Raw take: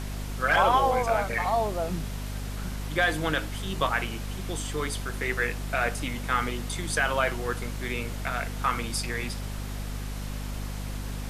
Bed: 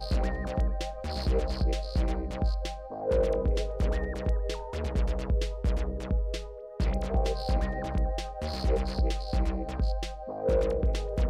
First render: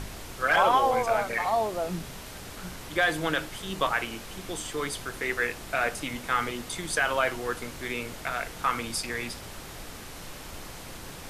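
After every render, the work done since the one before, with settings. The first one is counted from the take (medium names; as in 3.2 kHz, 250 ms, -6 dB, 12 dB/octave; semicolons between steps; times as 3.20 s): de-hum 50 Hz, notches 5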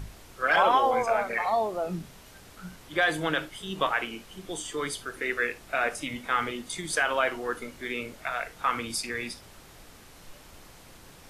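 noise print and reduce 9 dB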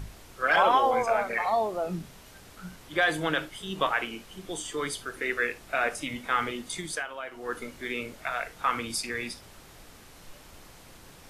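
6.80–7.58 s: dip -12.5 dB, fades 0.27 s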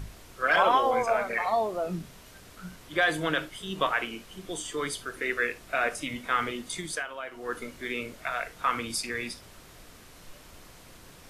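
band-stop 830 Hz, Q 14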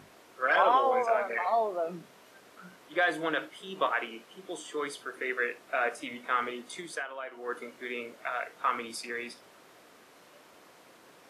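high-pass 330 Hz 12 dB/octave; treble shelf 2.7 kHz -10 dB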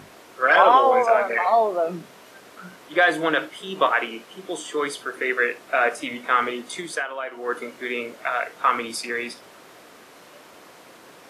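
trim +9 dB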